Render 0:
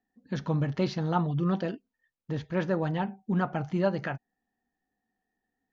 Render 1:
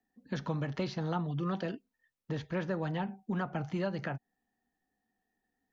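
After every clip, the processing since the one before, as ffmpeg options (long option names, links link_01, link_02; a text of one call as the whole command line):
ffmpeg -i in.wav -filter_complex "[0:a]acrossover=split=150|470|1300[link_01][link_02][link_03][link_04];[link_01]acompressor=threshold=-42dB:ratio=4[link_05];[link_02]acompressor=threshold=-37dB:ratio=4[link_06];[link_03]acompressor=threshold=-39dB:ratio=4[link_07];[link_04]acompressor=threshold=-43dB:ratio=4[link_08];[link_05][link_06][link_07][link_08]amix=inputs=4:normalize=0" out.wav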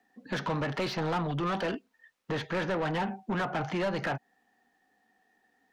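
ffmpeg -i in.wav -filter_complex "[0:a]asplit=2[link_01][link_02];[link_02]highpass=frequency=720:poles=1,volume=25dB,asoftclip=type=tanh:threshold=-20.5dB[link_03];[link_01][link_03]amix=inputs=2:normalize=0,lowpass=frequency=2500:poles=1,volume=-6dB,volume=-1.5dB" out.wav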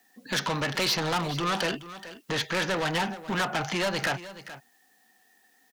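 ffmpeg -i in.wav -af "crystalizer=i=6.5:c=0,aecho=1:1:426:0.178" out.wav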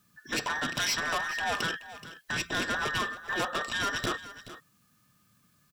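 ffmpeg -i in.wav -af "afftfilt=real='real(if(between(b,1,1012),(2*floor((b-1)/92)+1)*92-b,b),0)':imag='imag(if(between(b,1,1012),(2*floor((b-1)/92)+1)*92-b,b),0)*if(between(b,1,1012),-1,1)':win_size=2048:overlap=0.75,volume=-3dB" out.wav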